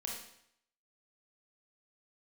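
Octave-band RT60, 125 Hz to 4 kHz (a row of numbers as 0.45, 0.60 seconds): 0.75, 0.65, 0.70, 0.70, 0.70, 0.70 seconds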